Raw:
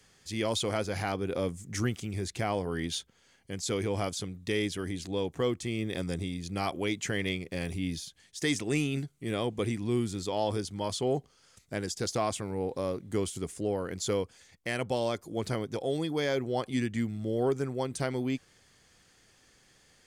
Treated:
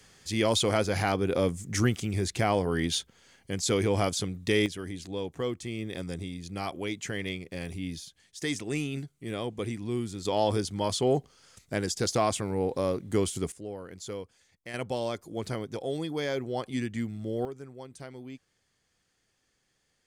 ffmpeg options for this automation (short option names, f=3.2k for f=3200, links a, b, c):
-af "asetnsamples=n=441:p=0,asendcmd='4.66 volume volume -2.5dB;10.25 volume volume 4dB;13.52 volume volume -8dB;14.74 volume volume -1.5dB;17.45 volume volume -12dB',volume=5dB"